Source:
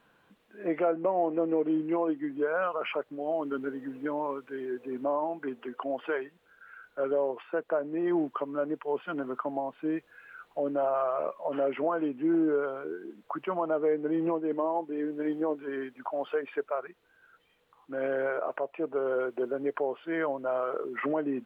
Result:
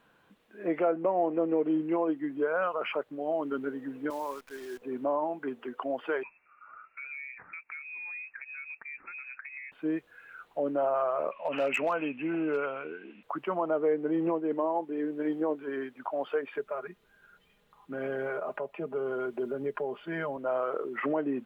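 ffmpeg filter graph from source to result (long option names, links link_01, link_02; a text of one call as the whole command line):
ffmpeg -i in.wav -filter_complex "[0:a]asettb=1/sr,asplit=3[link_01][link_02][link_03];[link_01]atrim=end=4.104[link_04];[link_02]atrim=start=4.1:end=4.82,asetpts=PTS-STARTPTS,afade=type=in:duration=0.004:curve=qsin,afade=type=out:start_time=0.716:duration=0.004:curve=qsin,highpass=frequency=650:poles=1,acrusher=bits=9:dc=4:mix=0:aa=0.000001[link_05];[link_03]atrim=start=4.816[link_06];[link_04][link_05]acrossfade=duration=0.004:curve1=hsin:curve2=qsin[link_07];[link_07][link_06]acrossfade=duration=0.004:curve1=qsin:curve2=hsin,asettb=1/sr,asplit=3[link_08][link_09][link_10];[link_08]atrim=end=6.234[link_11];[link_09]atrim=start=6.23:end=9.72,asetpts=PTS-STARTPTS,afade=type=in:duration=0.004:curve=qsin,afade=type=out:start_time=3.486:duration=0.004:curve=qsin,acompressor=threshold=-41dB:ratio=4:attack=3.2:release=140:knee=1:detection=peak,lowpass=frequency=2400:width_type=q:width=0.5098,lowpass=frequency=2400:width_type=q:width=0.6013,lowpass=frequency=2400:width_type=q:width=0.9,lowpass=frequency=2400:width_type=q:width=2.563,afreqshift=-2800[link_12];[link_10]atrim=start=9.716[link_13];[link_11][link_12]acrossfade=duration=0.004:curve1=hsin:curve2=qsin[link_14];[link_14][link_13]acrossfade=duration=0.004:curve1=qsin:curve2=hsin,asettb=1/sr,asplit=3[link_15][link_16][link_17];[link_15]atrim=end=11.314[link_18];[link_16]atrim=start=11.31:end=13.23,asetpts=PTS-STARTPTS,afade=type=in:duration=0.004:curve=qsin,afade=type=out:start_time=1.916:duration=0.004:curve=qsin,lowpass=frequency=2600:width_type=q:width=11,equalizer=frequency=360:width=3.6:gain=-9,asoftclip=type=hard:threshold=-22dB[link_19];[link_17]atrim=start=13.226[link_20];[link_18][link_19]acrossfade=duration=0.004:curve1=hsin:curve2=qsin[link_21];[link_21][link_20]acrossfade=duration=0.004:curve1=qsin:curve2=hsin,asettb=1/sr,asplit=3[link_22][link_23][link_24];[link_22]atrim=end=16.544[link_25];[link_23]atrim=start=16.54:end=20.37,asetpts=PTS-STARTPTS,afade=type=in:duration=0.004:curve=qsin,afade=type=out:start_time=3.826:duration=0.004:curve=qsin,bass=frequency=250:gain=8,treble=frequency=4000:gain=2,aecho=1:1:4.9:0.63,atrim=end_sample=168903,acrossover=split=160|3000[link_26][link_27][link_28];[link_27]acompressor=threshold=-34dB:ratio=2:attack=3.2:release=140:knee=2.83:detection=peak[link_29];[link_26][link_29][link_28]amix=inputs=3:normalize=0[link_30];[link_24]atrim=start=20.366[link_31];[link_25][link_30]acrossfade=duration=0.004:curve1=hsin:curve2=qsin[link_32];[link_32][link_31]acrossfade=duration=0.004:curve1=qsin:curve2=hsin" out.wav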